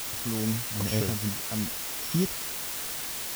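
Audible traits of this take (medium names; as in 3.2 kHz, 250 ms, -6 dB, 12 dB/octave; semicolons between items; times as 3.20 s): a buzz of ramps at a fixed pitch in blocks of 8 samples; tremolo triangle 2.4 Hz, depth 50%; a quantiser's noise floor 6-bit, dither triangular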